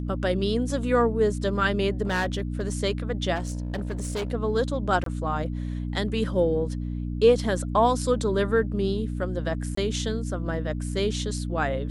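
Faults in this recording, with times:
mains hum 60 Hz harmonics 5 −30 dBFS
0:02.02–0:02.77: clipping −21 dBFS
0:03.35–0:04.32: clipping −25.5 dBFS
0:05.04–0:05.06: drop-out 23 ms
0:09.75–0:09.77: drop-out 24 ms

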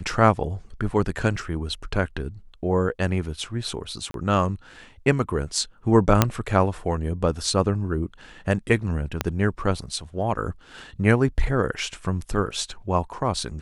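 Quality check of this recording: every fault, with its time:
0:04.11–0:04.14: drop-out 32 ms
0:06.22: click 0 dBFS
0:09.21: click −7 dBFS

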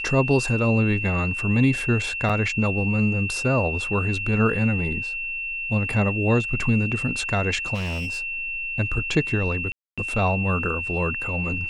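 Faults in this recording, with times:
whistle 2,700 Hz −27 dBFS
0:02.29–0:02.30: drop-out 6.4 ms
0:07.74–0:08.21: clipping −24.5 dBFS
0:09.72–0:09.98: drop-out 256 ms

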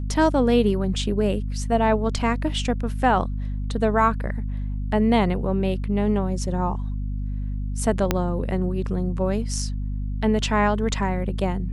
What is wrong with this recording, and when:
mains hum 50 Hz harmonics 5 −27 dBFS
0:08.11: click −5 dBFS

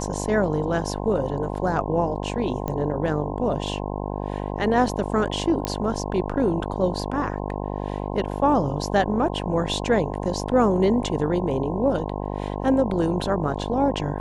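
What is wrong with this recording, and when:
mains buzz 50 Hz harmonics 21 −29 dBFS
0:02.68: click −15 dBFS
0:05.65: click −9 dBFS

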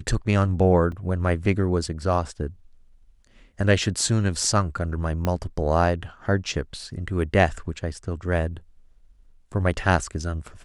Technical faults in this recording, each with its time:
0:00.92: drop-out 2.4 ms
0:05.25: click −11 dBFS

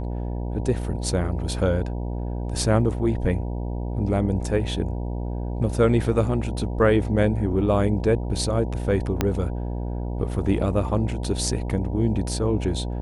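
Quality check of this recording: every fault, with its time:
mains buzz 60 Hz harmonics 16 −28 dBFS
0:09.21: click −6 dBFS

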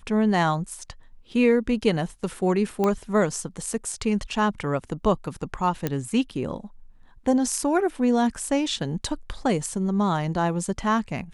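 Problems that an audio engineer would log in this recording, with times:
0:02.84: click −12 dBFS
0:05.87: click −11 dBFS

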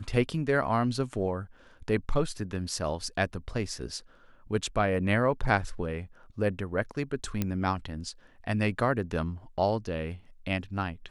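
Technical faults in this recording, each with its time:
0:07.42: click −14 dBFS

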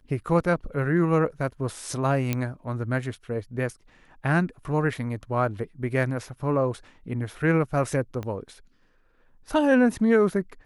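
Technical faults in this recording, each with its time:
0:02.33: click −11 dBFS
0:08.23: click −21 dBFS

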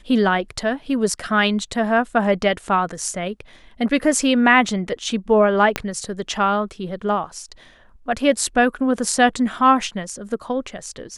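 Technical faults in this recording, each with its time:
0:05.76: click −5 dBFS

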